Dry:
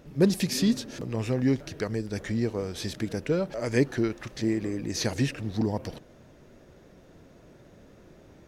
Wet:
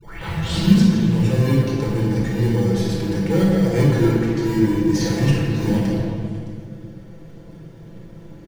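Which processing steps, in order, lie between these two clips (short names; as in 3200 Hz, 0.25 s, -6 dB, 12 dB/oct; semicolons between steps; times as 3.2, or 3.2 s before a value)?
tape start at the beginning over 0.74 s; in parallel at -4.5 dB: sample-rate reducer 1300 Hz, jitter 0%; on the sum: low shelf 150 Hz +3.5 dB; comb 6 ms, depth 71%; transient shaper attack -5 dB, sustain +4 dB; on a send: delay with a stepping band-pass 0.123 s, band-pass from 150 Hz, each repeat 1.4 oct, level -3 dB; on the sum: shoebox room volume 2400 m³, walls mixed, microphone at 4.4 m; gain -5 dB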